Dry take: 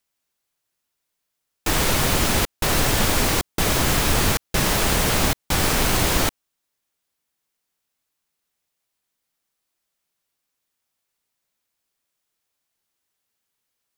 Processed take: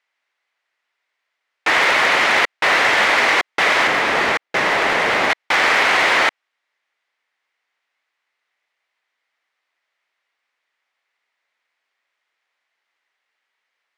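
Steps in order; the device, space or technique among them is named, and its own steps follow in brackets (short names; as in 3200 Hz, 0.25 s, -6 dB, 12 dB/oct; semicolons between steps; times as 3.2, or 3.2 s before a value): megaphone (BPF 640–2900 Hz; bell 2000 Hz +8 dB 0.46 oct; hard clip -17.5 dBFS, distortion -21 dB); 3.87–5.3 tilt shelf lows +4.5 dB, about 710 Hz; gain +9 dB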